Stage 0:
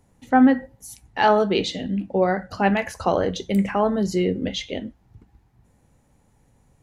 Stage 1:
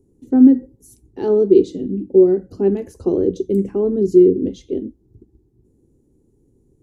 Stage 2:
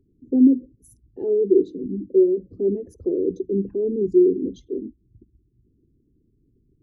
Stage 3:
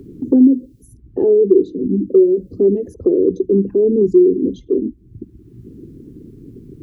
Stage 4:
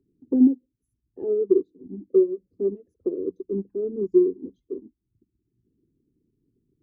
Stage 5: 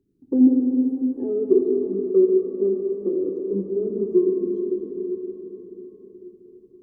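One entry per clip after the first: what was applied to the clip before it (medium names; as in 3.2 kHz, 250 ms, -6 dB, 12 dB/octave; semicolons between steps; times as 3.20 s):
FFT filter 200 Hz 0 dB, 380 Hz +15 dB, 620 Hz -14 dB, 2.1 kHz -24 dB, 7.7 kHz -7 dB
resonances exaggerated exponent 2; trim -5 dB
three bands compressed up and down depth 70%; trim +7.5 dB
upward expansion 2.5:1, over -25 dBFS; trim -5 dB
plate-style reverb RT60 4.8 s, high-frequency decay 0.85×, DRR -0.5 dB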